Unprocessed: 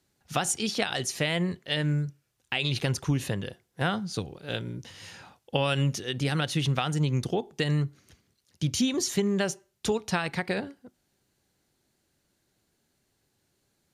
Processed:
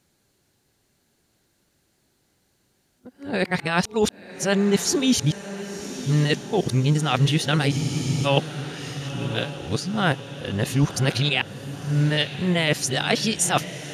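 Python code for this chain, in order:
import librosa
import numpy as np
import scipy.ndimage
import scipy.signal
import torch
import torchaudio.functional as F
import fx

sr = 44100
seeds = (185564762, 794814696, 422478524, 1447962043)

y = np.flip(x).copy()
y = fx.echo_diffused(y, sr, ms=1045, feedback_pct=58, wet_db=-12.5)
y = fx.spec_freeze(y, sr, seeds[0], at_s=7.74, hold_s=0.52)
y = y * 10.0 ** (6.0 / 20.0)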